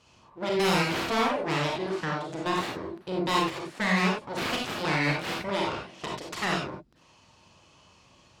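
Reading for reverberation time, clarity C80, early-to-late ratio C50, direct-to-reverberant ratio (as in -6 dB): not exponential, 7.5 dB, 1.5 dB, -1.5 dB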